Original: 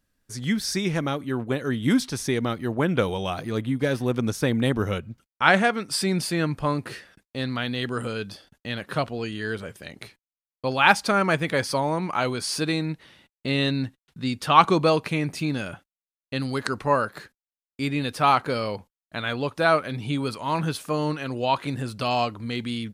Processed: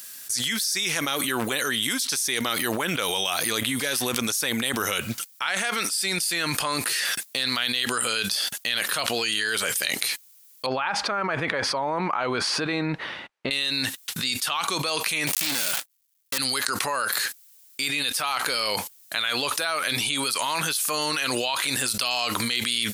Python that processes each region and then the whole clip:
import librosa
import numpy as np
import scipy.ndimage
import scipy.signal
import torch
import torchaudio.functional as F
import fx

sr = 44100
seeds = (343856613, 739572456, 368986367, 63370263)

y = fx.chain(x, sr, fx.lowpass(hz=1200.0, slope=12),
    fx.low_shelf(hz=69.0, db=10.5), at=(10.66, 13.51))
y = fx.chain(y, sr, fx.dead_time(dead_ms=0.21),
    fx.low_shelf(hz=78.0, db=-10.0),
    fx.leveller(passes=3), at=(15.27, 16.38))
y = np.diff(y, prepend=0.0)
y = fx.env_flatten(y, sr, amount_pct=100)